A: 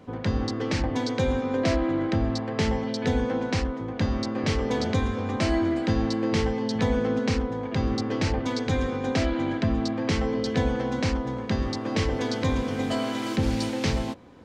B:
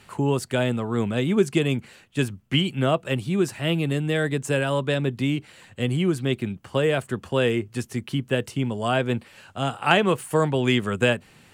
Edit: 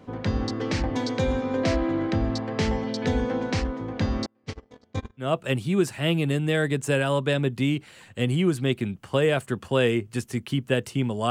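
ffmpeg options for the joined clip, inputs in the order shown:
-filter_complex "[0:a]asettb=1/sr,asplit=3[a][b][c];[a]atrim=end=4.264[d];[b]atrim=start=4.26:end=5.37,asetpts=PTS-STARTPTS,afade=t=in:d=0.004:c=qsin,afade=t=out:st=1.106:d=0.004:c=qsin,agate=range=-39dB:threshold=-22dB:ratio=16:release=100:detection=peak[e];[c]atrim=start=5.366[f];[d][e]acrossfade=d=0.004:c1=hsin:c2=qsin[g];[g][f]acrossfade=d=0.004:c1=qsin:c2=hsin,apad=whole_dur=11.3,atrim=end=11.3,atrim=end=5.37,asetpts=PTS-STARTPTS[h];[1:a]atrim=start=2.78:end=8.91,asetpts=PTS-STARTPTS[i];[h][i]acrossfade=d=0.2:c1=tri:c2=tri"

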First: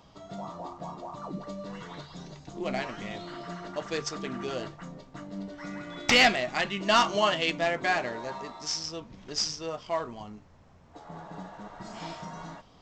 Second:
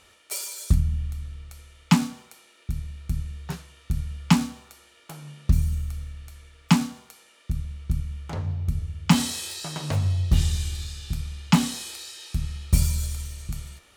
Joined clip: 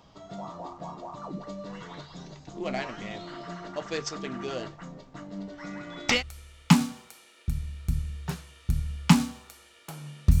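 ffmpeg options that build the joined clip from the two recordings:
-filter_complex "[0:a]apad=whole_dur=10.4,atrim=end=10.4,atrim=end=6.23,asetpts=PTS-STARTPTS[a];[1:a]atrim=start=1.32:end=5.61,asetpts=PTS-STARTPTS[b];[a][b]acrossfade=d=0.12:c1=tri:c2=tri"

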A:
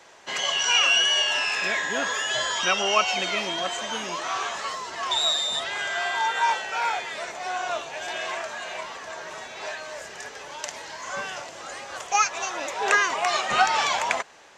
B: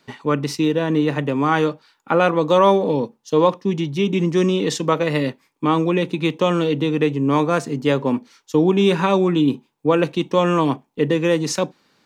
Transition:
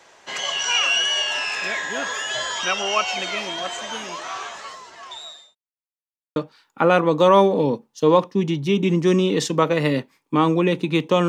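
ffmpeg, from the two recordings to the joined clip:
-filter_complex "[0:a]apad=whole_dur=11.28,atrim=end=11.28,asplit=2[a][b];[a]atrim=end=5.55,asetpts=PTS-STARTPTS,afade=t=out:st=3.95:d=1.6[c];[b]atrim=start=5.55:end=6.36,asetpts=PTS-STARTPTS,volume=0[d];[1:a]atrim=start=1.66:end=6.58,asetpts=PTS-STARTPTS,afade=t=in:d=0.004:c=hsin[e];[c][d][e]concat=n=3:v=0:a=1"

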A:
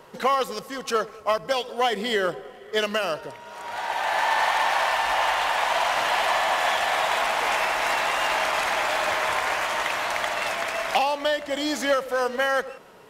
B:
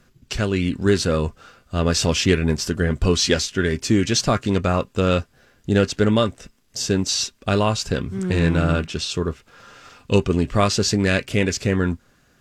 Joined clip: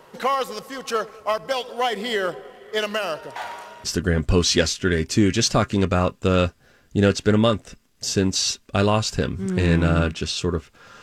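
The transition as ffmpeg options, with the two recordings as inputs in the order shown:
-filter_complex "[0:a]apad=whole_dur=11.02,atrim=end=11.02,asplit=2[a][b];[a]atrim=end=3.362[c];[b]atrim=start=3.358:end=3.842,asetpts=PTS-STARTPTS,areverse[d];[1:a]atrim=start=2.568:end=9.75[e];[c][d]acrossfade=d=0.004:c1=hsin:c2=hsin[f];[f][e]acrossfade=d=0.004:c1=hsin:c2=hsin"

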